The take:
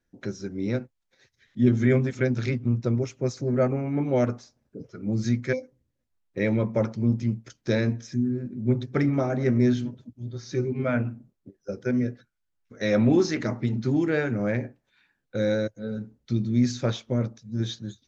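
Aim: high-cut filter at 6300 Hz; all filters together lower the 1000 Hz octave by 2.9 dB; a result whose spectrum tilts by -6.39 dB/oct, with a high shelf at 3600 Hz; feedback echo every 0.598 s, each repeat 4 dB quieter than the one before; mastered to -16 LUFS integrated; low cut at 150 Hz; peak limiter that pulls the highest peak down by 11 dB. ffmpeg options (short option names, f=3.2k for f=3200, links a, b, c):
-af "highpass=150,lowpass=6.3k,equalizer=f=1k:t=o:g=-5,highshelf=f=3.6k:g=5.5,alimiter=limit=-21.5dB:level=0:latency=1,aecho=1:1:598|1196|1794|2392|2990|3588|4186|4784|5382:0.631|0.398|0.25|0.158|0.0994|0.0626|0.0394|0.0249|0.0157,volume=14dB"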